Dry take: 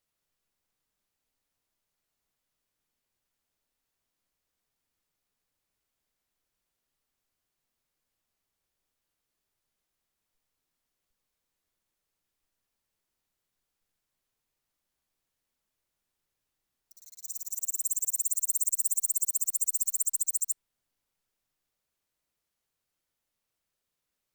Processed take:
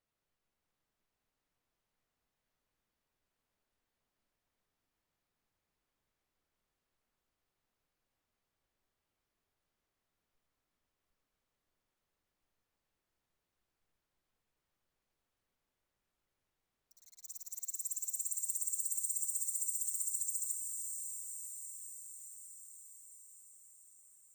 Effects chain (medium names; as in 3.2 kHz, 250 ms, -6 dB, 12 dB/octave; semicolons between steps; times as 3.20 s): treble shelf 3.4 kHz -10.5 dB; on a send: echo that smears into a reverb 538 ms, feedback 66%, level -4.5 dB